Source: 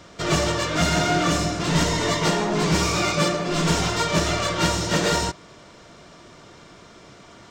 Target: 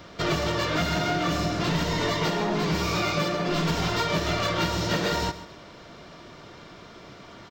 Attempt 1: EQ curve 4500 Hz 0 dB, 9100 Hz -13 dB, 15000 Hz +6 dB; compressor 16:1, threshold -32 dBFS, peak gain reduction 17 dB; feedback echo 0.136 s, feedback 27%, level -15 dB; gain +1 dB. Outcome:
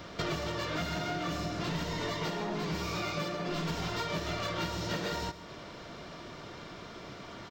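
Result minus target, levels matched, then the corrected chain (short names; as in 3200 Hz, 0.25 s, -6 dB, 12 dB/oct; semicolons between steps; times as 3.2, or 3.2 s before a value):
compressor: peak gain reduction +9 dB
EQ curve 4500 Hz 0 dB, 9100 Hz -13 dB, 15000 Hz +6 dB; compressor 16:1, threshold -22.5 dBFS, peak gain reduction 8 dB; feedback echo 0.136 s, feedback 27%, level -15 dB; gain +1 dB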